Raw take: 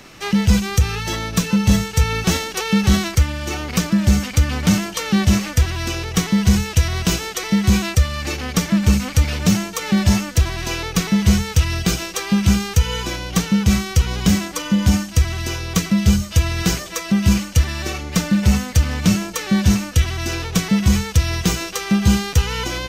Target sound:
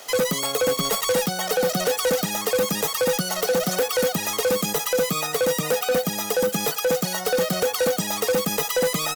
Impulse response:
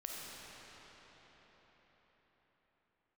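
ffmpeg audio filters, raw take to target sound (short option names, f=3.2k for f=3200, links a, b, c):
-af "highpass=130,aecho=1:1:3.9:0.47,asoftclip=type=hard:threshold=-17.5dB,asetrate=110250,aresample=44100"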